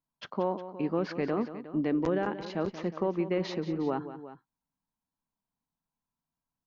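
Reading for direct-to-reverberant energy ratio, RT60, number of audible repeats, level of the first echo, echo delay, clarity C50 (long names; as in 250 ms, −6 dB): no reverb audible, no reverb audible, 2, −12.5 dB, 181 ms, no reverb audible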